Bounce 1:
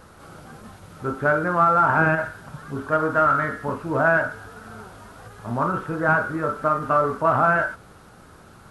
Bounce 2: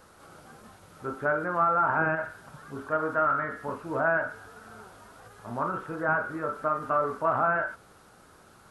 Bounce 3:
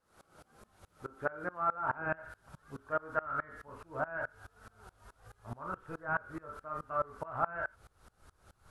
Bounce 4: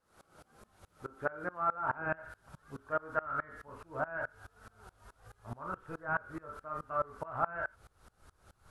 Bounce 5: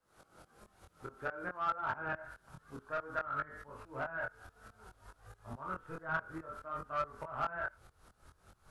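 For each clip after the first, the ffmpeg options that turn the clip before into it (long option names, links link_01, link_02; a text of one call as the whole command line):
ffmpeg -i in.wav -filter_complex "[0:a]bass=frequency=250:gain=-6,treble=frequency=4000:gain=3,acrossover=split=2700[link_01][link_02];[link_02]acompressor=threshold=-50dB:ratio=4:attack=1:release=60[link_03];[link_01][link_03]amix=inputs=2:normalize=0,acrossover=split=3000[link_04][link_05];[link_05]alimiter=level_in=22.5dB:limit=-24dB:level=0:latency=1,volume=-22.5dB[link_06];[link_04][link_06]amix=inputs=2:normalize=0,volume=-6dB" out.wav
ffmpeg -i in.wav -af "asubboost=boost=7:cutoff=81,aeval=exprs='val(0)*pow(10,-25*if(lt(mod(-4.7*n/s,1),2*abs(-4.7)/1000),1-mod(-4.7*n/s,1)/(2*abs(-4.7)/1000),(mod(-4.7*n/s,1)-2*abs(-4.7)/1000)/(1-2*abs(-4.7)/1000))/20)':channel_layout=same,volume=-2dB" out.wav
ffmpeg -i in.wav -af anull out.wav
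ffmpeg -i in.wav -filter_complex "[0:a]flanger=delay=20:depth=4.9:speed=0.56,acrossover=split=100|1200[link_01][link_02][link_03];[link_02]asoftclip=type=tanh:threshold=-39dB[link_04];[link_01][link_04][link_03]amix=inputs=3:normalize=0,volume=2.5dB" out.wav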